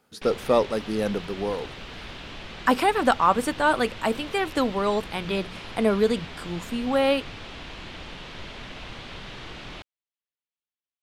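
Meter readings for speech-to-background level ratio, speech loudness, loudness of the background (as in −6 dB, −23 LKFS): 14.0 dB, −25.0 LKFS, −39.0 LKFS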